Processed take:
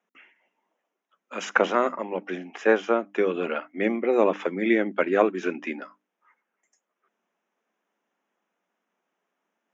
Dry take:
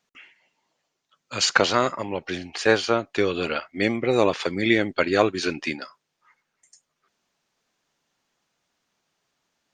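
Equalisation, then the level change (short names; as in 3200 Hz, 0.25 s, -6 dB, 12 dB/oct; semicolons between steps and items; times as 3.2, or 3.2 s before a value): running mean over 10 samples; elliptic high-pass 190 Hz, stop band 40 dB; notches 50/100/150/200/250/300 Hz; 0.0 dB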